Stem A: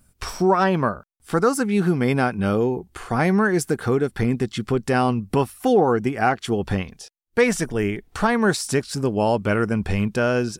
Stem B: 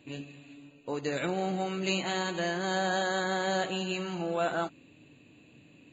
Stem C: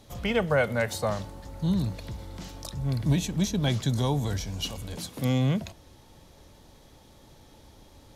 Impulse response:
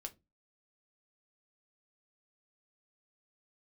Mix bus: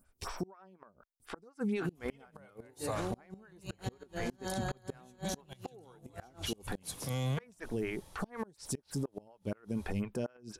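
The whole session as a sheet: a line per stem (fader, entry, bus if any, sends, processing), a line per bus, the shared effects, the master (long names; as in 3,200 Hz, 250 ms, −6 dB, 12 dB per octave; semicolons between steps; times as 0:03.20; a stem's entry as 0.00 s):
−5.5 dB, 0.00 s, no send, phaser with staggered stages 4.1 Hz
−2.0 dB, 1.75 s, no send, parametric band 2,100 Hz −7.5 dB 2.8 octaves
−4.5 dB, 1.85 s, no send, graphic EQ with 15 bands 250 Hz −8 dB, 1,000 Hz +3 dB, 10,000 Hz +12 dB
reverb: not used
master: gate with flip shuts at −18 dBFS, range −32 dB; brickwall limiter −26.5 dBFS, peak gain reduction 9.5 dB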